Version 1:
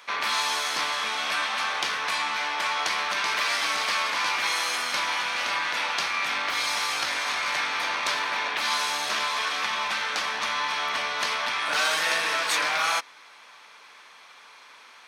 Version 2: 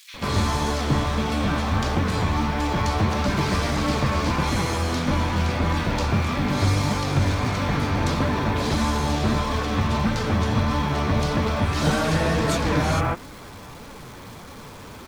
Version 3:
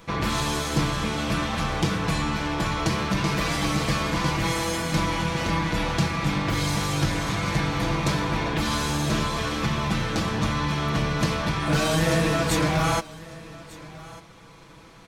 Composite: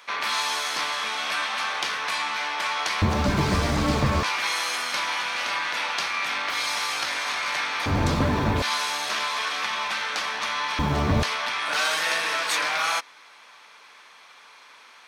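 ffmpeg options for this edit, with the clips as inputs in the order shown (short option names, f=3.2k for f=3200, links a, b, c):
-filter_complex "[1:a]asplit=3[a][b][c];[0:a]asplit=4[d][e][f][g];[d]atrim=end=3.022[h];[a]atrim=start=3.018:end=4.232[i];[e]atrim=start=4.228:end=7.862[j];[b]atrim=start=7.858:end=8.622[k];[f]atrim=start=8.618:end=10.792[l];[c]atrim=start=10.788:end=11.232[m];[g]atrim=start=11.228[n];[h][i]acrossfade=d=0.004:c1=hsin:c2=hsin[o];[o][j]acrossfade=d=0.004:c1=hsin:c2=hsin[p];[p][k]acrossfade=d=0.004:c1=hsin:c2=hsin[q];[q][l]acrossfade=d=0.004:c1=hsin:c2=hsin[r];[r][m]acrossfade=d=0.004:c1=hsin:c2=hsin[s];[s][n]acrossfade=d=0.004:c1=hsin:c2=hsin"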